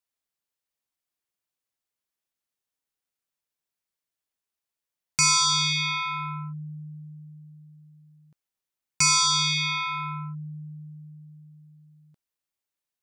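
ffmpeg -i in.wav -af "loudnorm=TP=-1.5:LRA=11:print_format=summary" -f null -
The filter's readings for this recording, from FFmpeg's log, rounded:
Input Integrated:    -23.0 LUFS
Input True Peak:     -15.0 dBTP
Input LRA:            17.4 LU
Input Threshold:     -37.2 LUFS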